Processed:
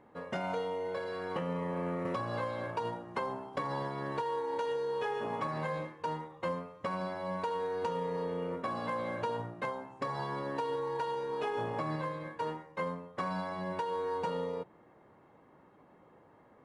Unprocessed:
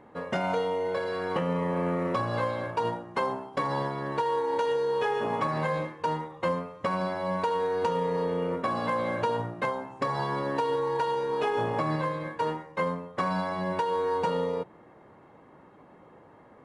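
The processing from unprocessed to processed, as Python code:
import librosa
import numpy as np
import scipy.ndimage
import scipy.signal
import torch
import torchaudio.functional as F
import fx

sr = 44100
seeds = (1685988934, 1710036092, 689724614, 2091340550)

y = fx.band_squash(x, sr, depth_pct=70, at=(2.05, 4.22))
y = y * 10.0 ** (-7.0 / 20.0)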